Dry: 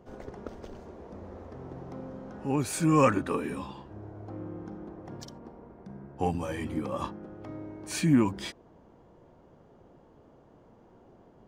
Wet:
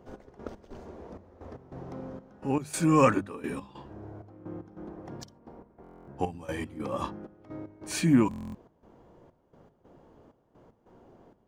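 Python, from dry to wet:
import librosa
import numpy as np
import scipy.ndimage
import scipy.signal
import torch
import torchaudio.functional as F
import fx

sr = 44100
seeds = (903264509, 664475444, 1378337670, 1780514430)

y = fx.step_gate(x, sr, bpm=192, pattern='xx...xx..xxxx', floor_db=-12.0, edge_ms=4.5)
y = fx.hum_notches(y, sr, base_hz=50, count=4)
y = fx.buffer_glitch(y, sr, at_s=(5.82, 8.29), block=1024, repeats=10)
y = y * librosa.db_to_amplitude(1.0)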